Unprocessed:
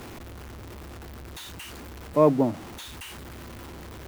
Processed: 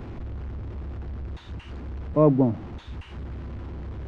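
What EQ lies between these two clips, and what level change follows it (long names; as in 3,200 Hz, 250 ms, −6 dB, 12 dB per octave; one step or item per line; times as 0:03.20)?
head-to-tape spacing loss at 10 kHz 40 dB
low-shelf EQ 180 Hz +11.5 dB
high-shelf EQ 3,900 Hz +9 dB
0.0 dB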